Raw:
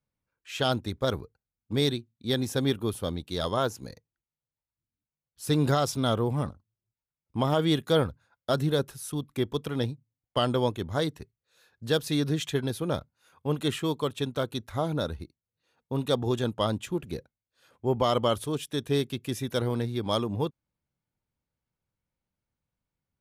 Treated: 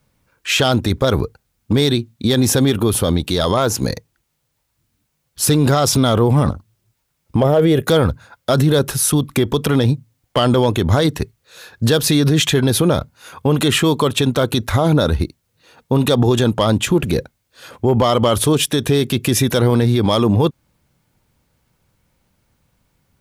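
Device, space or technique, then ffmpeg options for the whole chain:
loud club master: -filter_complex "[0:a]asettb=1/sr,asplit=3[s0][s1][s2];[s0]atrim=end=7.404[s3];[s1]atrim=start=7.4:end=7.88,asetpts=PTS-STARTPTS,afade=t=in:d=0.004:c=qsin,afade=t=out:st=0.476:d=0.004:c=qsin,equalizer=f=250:t=o:w=1:g=-7,equalizer=f=500:t=o:w=1:g=9,equalizer=f=1000:t=o:w=1:g=-8,equalizer=f=4000:t=o:w=1:g=-11,equalizer=f=8000:t=o:w=1:g=-6[s4];[s2]atrim=start=7.876[s5];[s3][s4]acrossfade=d=0.004:c1=hsin:c2=qsin[s6];[s6][s5]acrossfade=d=0.004:c1=qsin:c2=hsin,acompressor=threshold=0.0316:ratio=1.5,asoftclip=type=hard:threshold=0.106,alimiter=level_in=28.2:limit=0.891:release=50:level=0:latency=1,volume=0.531"

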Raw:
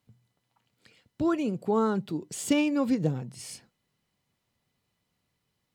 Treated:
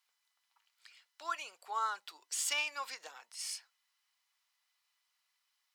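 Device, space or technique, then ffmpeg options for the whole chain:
headphones lying on a table: -af "highpass=f=1000:w=0.5412,highpass=f=1000:w=1.3066,equalizer=f=5300:t=o:w=0.5:g=4"

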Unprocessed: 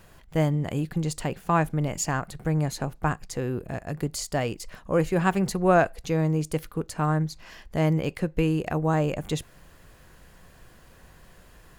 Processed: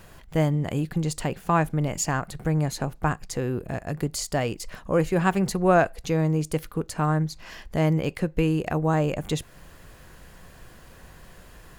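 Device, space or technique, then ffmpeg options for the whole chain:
parallel compression: -filter_complex "[0:a]asplit=2[s0][s1];[s1]acompressor=threshold=0.0158:ratio=6,volume=0.631[s2];[s0][s2]amix=inputs=2:normalize=0"

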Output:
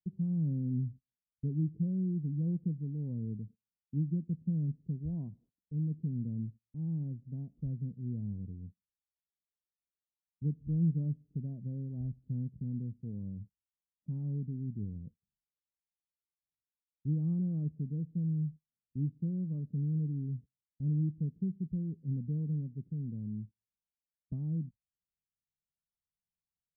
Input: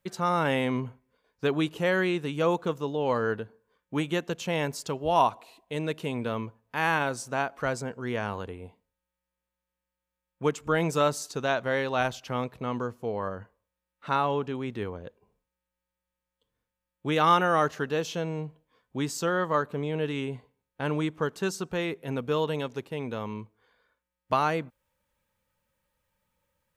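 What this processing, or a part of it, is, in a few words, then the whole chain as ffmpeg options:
the neighbour's flat through the wall: -af "agate=range=0.0631:threshold=0.00562:ratio=16:detection=peak,lowpass=f=210:w=0.5412,lowpass=f=210:w=1.3066,equalizer=f=160:t=o:w=0.72:g=4"

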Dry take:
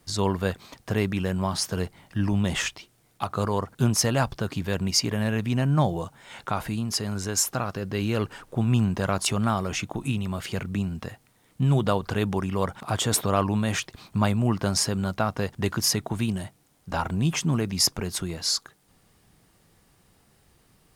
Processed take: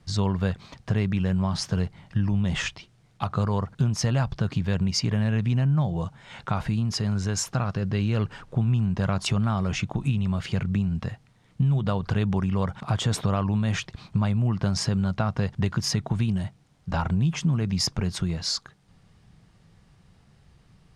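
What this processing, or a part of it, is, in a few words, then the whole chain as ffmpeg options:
jukebox: -af "lowpass=5700,lowshelf=f=220:t=q:w=1.5:g=6.5,acompressor=threshold=0.1:ratio=6"

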